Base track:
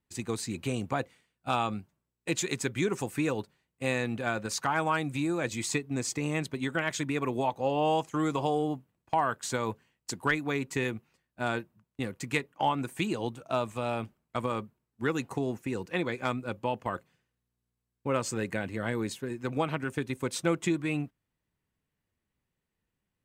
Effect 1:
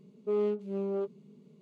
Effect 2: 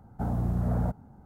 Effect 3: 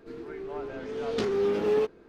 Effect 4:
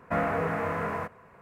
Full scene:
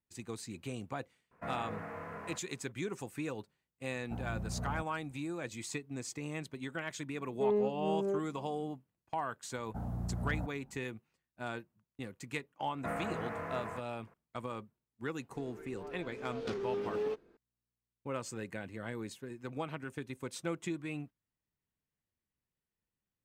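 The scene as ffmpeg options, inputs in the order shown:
-filter_complex "[4:a]asplit=2[s0][s1];[2:a]asplit=2[s2][s3];[0:a]volume=0.335[s4];[1:a]adynamicsmooth=sensitivity=2:basefreq=760[s5];[s3]equalizer=f=380:t=o:w=0.77:g=-3.5[s6];[s0]atrim=end=1.41,asetpts=PTS-STARTPTS,volume=0.2,afade=t=in:d=0.004:c=hsin,afade=t=out:st=1.406:d=0.004:c=hsin,adelay=1310[s7];[s2]atrim=end=1.25,asetpts=PTS-STARTPTS,volume=0.251,afade=t=in:d=0.004:c=hsin,afade=t=out:st=1.246:d=0.004:c=hsin,adelay=3910[s8];[s5]atrim=end=1.61,asetpts=PTS-STARTPTS,volume=0.891,afade=t=in:d=0.004:c=hsin,afade=t=out:st=1.606:d=0.004:c=hsin,adelay=7130[s9];[s6]atrim=end=1.25,asetpts=PTS-STARTPTS,volume=0.335,afade=t=in:d=0.004:c=hsin,afade=t=out:st=1.246:d=0.004:c=hsin,adelay=9550[s10];[s1]atrim=end=1.41,asetpts=PTS-STARTPTS,volume=0.299,afade=t=in:d=0.004:c=hsin,afade=t=out:st=1.406:d=0.004:c=hsin,adelay=12730[s11];[3:a]atrim=end=2.08,asetpts=PTS-STARTPTS,volume=0.299,afade=t=in:d=0.004:c=hsin,afade=t=out:st=2.076:d=0.004:c=hsin,adelay=15290[s12];[s4][s7][s8][s9][s10][s11][s12]amix=inputs=7:normalize=0"

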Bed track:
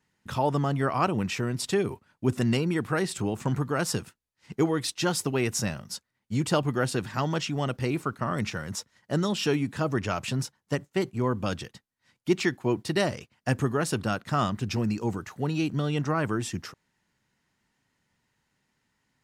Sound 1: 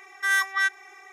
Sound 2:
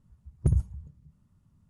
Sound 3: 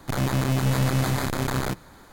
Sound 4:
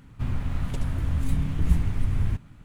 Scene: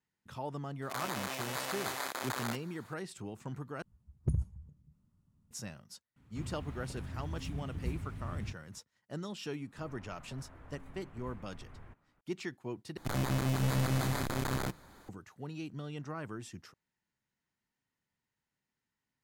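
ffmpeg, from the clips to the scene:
-filter_complex "[3:a]asplit=2[s0][s1];[4:a]asplit=2[s2][s3];[0:a]volume=0.188[s4];[s0]highpass=620[s5];[2:a]equalizer=f=250:t=o:w=1.4:g=3.5[s6];[s2]highpass=60[s7];[s3]acrossover=split=370 2000:gain=0.141 1 0.141[s8][s9][s10];[s8][s9][s10]amix=inputs=3:normalize=0[s11];[s4]asplit=3[s12][s13][s14];[s12]atrim=end=3.824[s15];[s6]atrim=end=1.69,asetpts=PTS-STARTPTS,volume=0.376[s16];[s13]atrim=start=5.506:end=12.974[s17];[s1]atrim=end=2.12,asetpts=PTS-STARTPTS,volume=0.398[s18];[s14]atrim=start=15.086[s19];[s5]atrim=end=2.12,asetpts=PTS-STARTPTS,volume=0.447,afade=t=in:d=0.004:c=hsin,afade=t=out:st=2.116:d=0.004:c=hsin,adelay=820[s20];[s7]atrim=end=2.64,asetpts=PTS-STARTPTS,volume=0.224,afade=t=in:d=0.004:c=hsin,afade=t=out:st=2.636:d=0.004:c=hsin,adelay=6160[s21];[s11]atrim=end=2.64,asetpts=PTS-STARTPTS,volume=0.251,afade=t=in:d=0.004:c=hsin,afade=t=out:st=2.636:d=0.004:c=hsin,adelay=9570[s22];[s15][s16]acrossfade=d=0.004:c1=hsin:c2=hsin[s23];[s23][s17]acrossfade=d=0.004:c1=hsin:c2=hsin[s24];[s24][s18]acrossfade=d=0.004:c1=hsin:c2=hsin[s25];[s25][s19]acrossfade=d=0.004:c1=hsin:c2=hsin[s26];[s26][s20][s21][s22]amix=inputs=4:normalize=0"

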